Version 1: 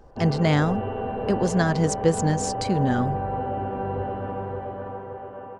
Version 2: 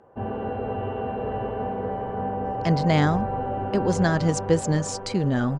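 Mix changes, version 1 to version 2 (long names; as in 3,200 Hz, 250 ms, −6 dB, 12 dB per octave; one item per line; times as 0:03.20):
speech: entry +2.45 s
master: add low-pass filter 8,800 Hz 12 dB per octave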